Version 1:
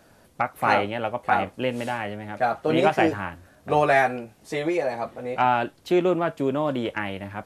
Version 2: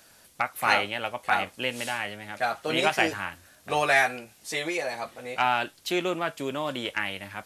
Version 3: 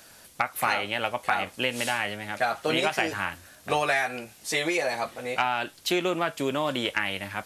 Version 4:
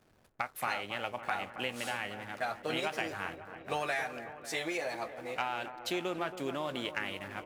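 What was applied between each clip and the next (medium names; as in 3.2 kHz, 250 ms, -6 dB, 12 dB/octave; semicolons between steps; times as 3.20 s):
tilt shelf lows -9 dB, about 1.5 kHz
compression 12:1, threshold -25 dBFS, peak gain reduction 10 dB; trim +4.5 dB
hysteresis with a dead band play -40 dBFS; feedback echo behind a low-pass 274 ms, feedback 67%, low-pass 1.7 kHz, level -11 dB; trim -9 dB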